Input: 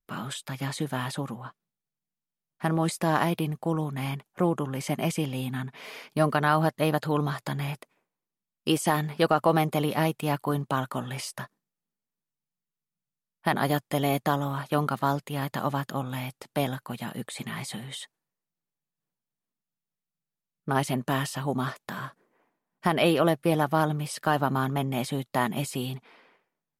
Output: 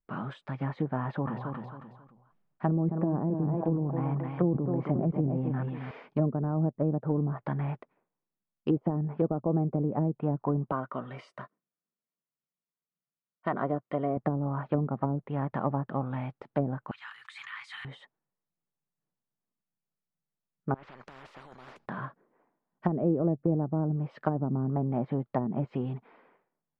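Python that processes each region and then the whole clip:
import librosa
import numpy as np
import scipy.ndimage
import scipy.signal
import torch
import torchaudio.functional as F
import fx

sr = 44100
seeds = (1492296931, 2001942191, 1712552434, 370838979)

y = fx.chain(x, sr, fx.echo_feedback(ms=270, feedback_pct=28, wet_db=-7.5),
    fx.sustainer(db_per_s=43.0), at=(1.0, 5.91))
y = fx.chain(y, sr, fx.low_shelf(hz=280.0, db=-8.0),
    fx.notch_comb(f0_hz=840.0), at=(10.72, 14.17))
y = fx.chain(y, sr, fx.cheby2_highpass(hz=620.0, order=4, stop_db=40),
    fx.high_shelf(hz=2100.0, db=8.5),
    fx.sustainer(db_per_s=31.0), at=(16.91, 17.85))
y = fx.chain(y, sr, fx.peak_eq(hz=4900.0, db=11.5, octaves=0.3),
    fx.over_compress(threshold_db=-31.0, ratio=-1.0),
    fx.spectral_comp(ratio=10.0), at=(20.74, 21.86))
y = scipy.signal.sosfilt(scipy.signal.butter(2, 1400.0, 'lowpass', fs=sr, output='sos'), y)
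y = fx.env_lowpass_down(y, sr, base_hz=370.0, full_db=-22.0)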